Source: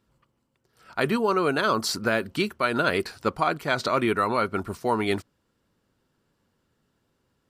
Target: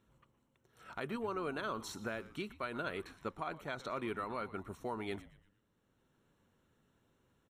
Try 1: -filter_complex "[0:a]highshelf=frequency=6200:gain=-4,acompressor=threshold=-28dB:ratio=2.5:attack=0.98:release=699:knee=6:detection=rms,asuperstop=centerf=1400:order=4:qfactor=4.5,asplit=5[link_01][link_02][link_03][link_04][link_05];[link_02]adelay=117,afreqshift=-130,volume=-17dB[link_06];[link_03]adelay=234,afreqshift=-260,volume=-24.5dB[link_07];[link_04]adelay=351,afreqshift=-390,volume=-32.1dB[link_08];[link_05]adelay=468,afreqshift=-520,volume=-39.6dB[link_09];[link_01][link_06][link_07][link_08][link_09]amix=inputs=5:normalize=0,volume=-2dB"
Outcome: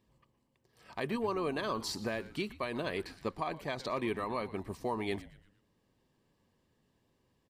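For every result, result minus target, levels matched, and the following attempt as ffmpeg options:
downward compressor: peak gain reduction −5.5 dB; 4,000 Hz band +2.5 dB
-filter_complex "[0:a]highshelf=frequency=6200:gain=-4,acompressor=threshold=-37dB:ratio=2.5:attack=0.98:release=699:knee=6:detection=rms,asuperstop=centerf=1400:order=4:qfactor=4.5,asplit=5[link_01][link_02][link_03][link_04][link_05];[link_02]adelay=117,afreqshift=-130,volume=-17dB[link_06];[link_03]adelay=234,afreqshift=-260,volume=-24.5dB[link_07];[link_04]adelay=351,afreqshift=-390,volume=-32.1dB[link_08];[link_05]adelay=468,afreqshift=-520,volume=-39.6dB[link_09];[link_01][link_06][link_07][link_08][link_09]amix=inputs=5:normalize=0,volume=-2dB"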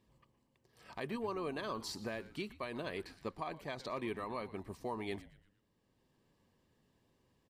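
4,000 Hz band +2.5 dB
-filter_complex "[0:a]highshelf=frequency=6200:gain=-4,acompressor=threshold=-37dB:ratio=2.5:attack=0.98:release=699:knee=6:detection=rms,asuperstop=centerf=4800:order=4:qfactor=4.5,asplit=5[link_01][link_02][link_03][link_04][link_05];[link_02]adelay=117,afreqshift=-130,volume=-17dB[link_06];[link_03]adelay=234,afreqshift=-260,volume=-24.5dB[link_07];[link_04]adelay=351,afreqshift=-390,volume=-32.1dB[link_08];[link_05]adelay=468,afreqshift=-520,volume=-39.6dB[link_09];[link_01][link_06][link_07][link_08][link_09]amix=inputs=5:normalize=0,volume=-2dB"

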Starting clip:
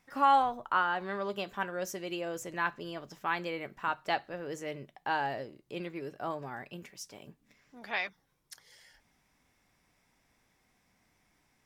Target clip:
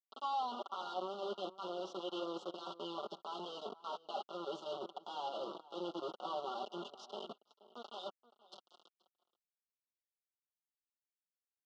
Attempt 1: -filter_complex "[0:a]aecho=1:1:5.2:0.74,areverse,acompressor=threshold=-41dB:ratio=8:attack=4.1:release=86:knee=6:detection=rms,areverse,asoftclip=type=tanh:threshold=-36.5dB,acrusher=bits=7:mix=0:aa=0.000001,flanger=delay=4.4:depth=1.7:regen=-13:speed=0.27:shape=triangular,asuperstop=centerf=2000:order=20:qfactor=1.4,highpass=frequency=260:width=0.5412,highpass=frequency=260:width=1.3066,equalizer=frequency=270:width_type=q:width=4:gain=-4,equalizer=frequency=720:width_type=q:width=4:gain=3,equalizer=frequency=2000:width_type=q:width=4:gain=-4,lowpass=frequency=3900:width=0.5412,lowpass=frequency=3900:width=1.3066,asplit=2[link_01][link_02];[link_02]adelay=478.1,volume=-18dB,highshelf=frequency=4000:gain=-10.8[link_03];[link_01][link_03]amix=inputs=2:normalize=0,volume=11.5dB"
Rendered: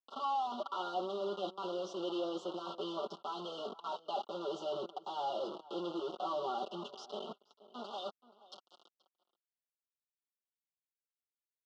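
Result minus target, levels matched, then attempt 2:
downward compressor: peak gain reduction −5 dB
-filter_complex "[0:a]aecho=1:1:5.2:0.74,areverse,acompressor=threshold=-47dB:ratio=8:attack=4.1:release=86:knee=6:detection=rms,areverse,asoftclip=type=tanh:threshold=-36.5dB,acrusher=bits=7:mix=0:aa=0.000001,flanger=delay=4.4:depth=1.7:regen=-13:speed=0.27:shape=triangular,asuperstop=centerf=2000:order=20:qfactor=1.4,highpass=frequency=260:width=0.5412,highpass=frequency=260:width=1.3066,equalizer=frequency=270:width_type=q:width=4:gain=-4,equalizer=frequency=720:width_type=q:width=4:gain=3,equalizer=frequency=2000:width_type=q:width=4:gain=-4,lowpass=frequency=3900:width=0.5412,lowpass=frequency=3900:width=1.3066,asplit=2[link_01][link_02];[link_02]adelay=478.1,volume=-18dB,highshelf=frequency=4000:gain=-10.8[link_03];[link_01][link_03]amix=inputs=2:normalize=0,volume=11.5dB"

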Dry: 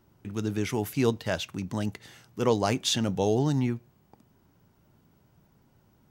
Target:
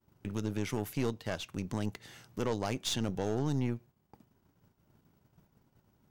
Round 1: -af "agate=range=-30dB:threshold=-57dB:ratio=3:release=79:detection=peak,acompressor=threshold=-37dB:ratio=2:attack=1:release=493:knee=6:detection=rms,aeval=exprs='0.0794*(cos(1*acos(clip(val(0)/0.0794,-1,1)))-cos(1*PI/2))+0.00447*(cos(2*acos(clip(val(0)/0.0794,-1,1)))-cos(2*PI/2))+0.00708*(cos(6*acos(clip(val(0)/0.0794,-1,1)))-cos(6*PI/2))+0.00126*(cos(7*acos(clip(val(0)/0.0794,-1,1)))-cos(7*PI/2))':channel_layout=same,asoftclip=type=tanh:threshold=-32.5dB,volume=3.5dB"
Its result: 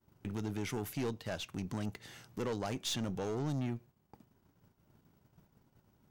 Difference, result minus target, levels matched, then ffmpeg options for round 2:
soft clipping: distortion +13 dB
-af "agate=range=-30dB:threshold=-57dB:ratio=3:release=79:detection=peak,acompressor=threshold=-37dB:ratio=2:attack=1:release=493:knee=6:detection=rms,aeval=exprs='0.0794*(cos(1*acos(clip(val(0)/0.0794,-1,1)))-cos(1*PI/2))+0.00447*(cos(2*acos(clip(val(0)/0.0794,-1,1)))-cos(2*PI/2))+0.00708*(cos(6*acos(clip(val(0)/0.0794,-1,1)))-cos(6*PI/2))+0.00126*(cos(7*acos(clip(val(0)/0.0794,-1,1)))-cos(7*PI/2))':channel_layout=same,asoftclip=type=tanh:threshold=-23dB,volume=3.5dB"

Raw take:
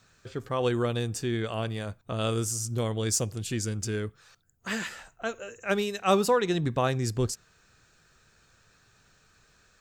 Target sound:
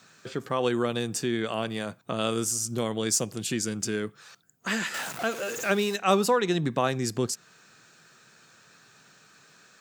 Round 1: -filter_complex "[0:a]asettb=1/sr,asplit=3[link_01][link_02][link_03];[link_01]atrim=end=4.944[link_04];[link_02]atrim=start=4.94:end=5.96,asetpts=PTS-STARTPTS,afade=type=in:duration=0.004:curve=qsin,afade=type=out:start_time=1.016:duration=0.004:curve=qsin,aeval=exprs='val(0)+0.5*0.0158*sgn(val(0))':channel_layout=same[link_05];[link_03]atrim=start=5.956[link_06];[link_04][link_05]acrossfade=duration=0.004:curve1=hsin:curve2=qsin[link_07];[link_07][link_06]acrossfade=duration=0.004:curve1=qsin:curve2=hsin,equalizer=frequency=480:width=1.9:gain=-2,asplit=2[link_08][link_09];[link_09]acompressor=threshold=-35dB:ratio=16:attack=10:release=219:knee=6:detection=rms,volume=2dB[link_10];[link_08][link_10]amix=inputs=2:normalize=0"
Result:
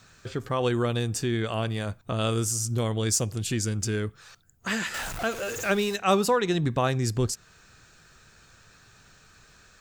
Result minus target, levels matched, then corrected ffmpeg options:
125 Hz band +6.5 dB
-filter_complex "[0:a]asettb=1/sr,asplit=3[link_01][link_02][link_03];[link_01]atrim=end=4.944[link_04];[link_02]atrim=start=4.94:end=5.96,asetpts=PTS-STARTPTS,afade=type=in:duration=0.004:curve=qsin,afade=type=out:start_time=1.016:duration=0.004:curve=qsin,aeval=exprs='val(0)+0.5*0.0158*sgn(val(0))':channel_layout=same[link_05];[link_03]atrim=start=5.956[link_06];[link_04][link_05]acrossfade=duration=0.004:curve1=hsin:curve2=qsin[link_07];[link_07][link_06]acrossfade=duration=0.004:curve1=qsin:curve2=hsin,highpass=frequency=150:width=0.5412,highpass=frequency=150:width=1.3066,equalizer=frequency=480:width=1.9:gain=-2,asplit=2[link_08][link_09];[link_09]acompressor=threshold=-35dB:ratio=16:attack=10:release=219:knee=6:detection=rms,volume=2dB[link_10];[link_08][link_10]amix=inputs=2:normalize=0"

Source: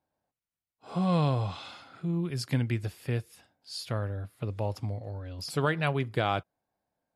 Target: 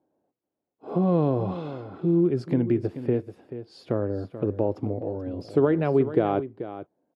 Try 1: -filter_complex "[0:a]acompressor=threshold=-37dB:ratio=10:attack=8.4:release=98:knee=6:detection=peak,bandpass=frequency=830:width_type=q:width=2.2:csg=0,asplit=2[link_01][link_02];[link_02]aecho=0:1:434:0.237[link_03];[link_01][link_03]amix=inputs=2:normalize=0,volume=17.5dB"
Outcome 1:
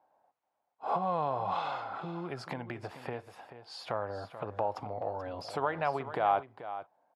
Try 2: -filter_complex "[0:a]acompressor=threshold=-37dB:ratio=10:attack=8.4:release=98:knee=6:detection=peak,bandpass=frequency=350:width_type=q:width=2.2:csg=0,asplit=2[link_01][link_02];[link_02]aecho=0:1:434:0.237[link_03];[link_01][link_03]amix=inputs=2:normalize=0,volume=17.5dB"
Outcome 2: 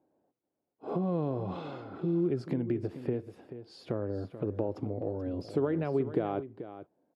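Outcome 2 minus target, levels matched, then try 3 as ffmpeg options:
downward compressor: peak gain reduction +9.5 dB
-filter_complex "[0:a]acompressor=threshold=-26.5dB:ratio=10:attack=8.4:release=98:knee=6:detection=peak,bandpass=frequency=350:width_type=q:width=2.2:csg=0,asplit=2[link_01][link_02];[link_02]aecho=0:1:434:0.237[link_03];[link_01][link_03]amix=inputs=2:normalize=0,volume=17.5dB"

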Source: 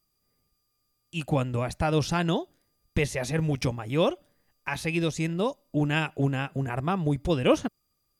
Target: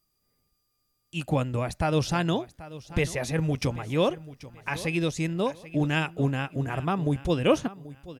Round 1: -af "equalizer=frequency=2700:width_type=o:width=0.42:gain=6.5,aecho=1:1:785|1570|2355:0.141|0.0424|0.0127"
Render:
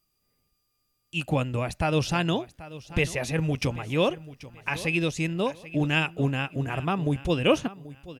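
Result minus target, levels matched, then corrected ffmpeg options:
2,000 Hz band +2.5 dB
-af "aecho=1:1:785|1570|2355:0.141|0.0424|0.0127"

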